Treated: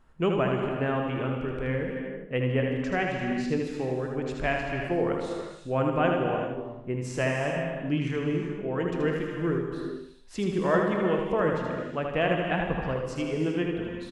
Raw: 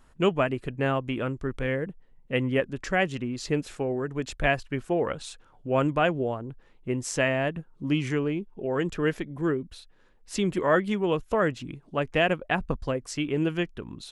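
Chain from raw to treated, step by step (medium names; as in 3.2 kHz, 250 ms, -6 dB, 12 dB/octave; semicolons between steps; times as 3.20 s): treble shelf 4 kHz -11 dB; feedback delay 78 ms, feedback 36%, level -5 dB; gated-style reverb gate 420 ms flat, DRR 3 dB; trim -3 dB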